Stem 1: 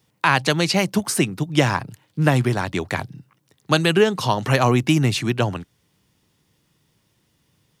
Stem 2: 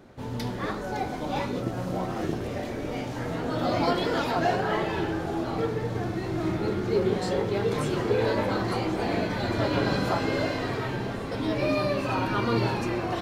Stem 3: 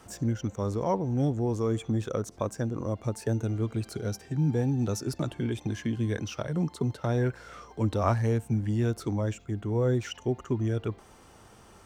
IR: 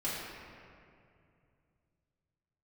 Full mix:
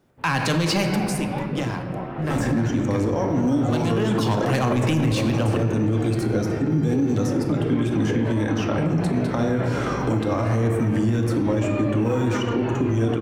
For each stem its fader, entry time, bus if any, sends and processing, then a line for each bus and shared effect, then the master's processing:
0.76 s -7.5 dB -> 1.17 s -19.5 dB -> 3.84 s -19.5 dB -> 4.11 s -8 dB, 0.00 s, send -8 dB, HPF 100 Hz 24 dB/oct; low shelf 150 Hz +10.5 dB; sample leveller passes 2
-12.5 dB, 0.00 s, no send, LPF 2800 Hz 24 dB/oct; AGC gain up to 11.5 dB; bit-crush 11-bit
+2.0 dB, 2.30 s, send -4 dB, bell 290 Hz +8.5 dB 0.31 oct; three-band squash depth 100%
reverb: on, RT60 2.5 s, pre-delay 3 ms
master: limiter -13.5 dBFS, peak gain reduction 11 dB

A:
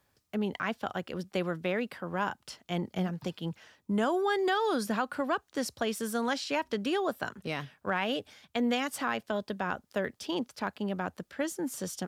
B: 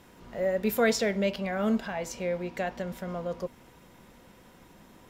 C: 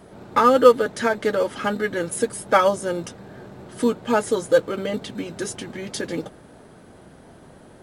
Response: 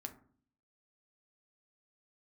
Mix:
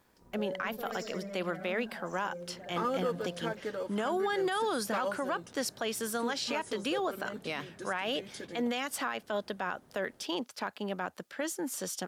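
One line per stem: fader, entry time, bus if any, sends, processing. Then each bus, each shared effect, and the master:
+2.5 dB, 0.00 s, no send, no echo send, HPF 440 Hz 6 dB/oct
-12.0 dB, 0.00 s, no send, echo send -10.5 dB, spectral gate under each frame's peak -15 dB strong; sample leveller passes 2; auto duck -14 dB, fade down 1.00 s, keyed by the first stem
-15.5 dB, 2.40 s, no send, no echo send, dry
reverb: off
echo: feedback echo 69 ms, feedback 49%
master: limiter -22.5 dBFS, peak gain reduction 8 dB

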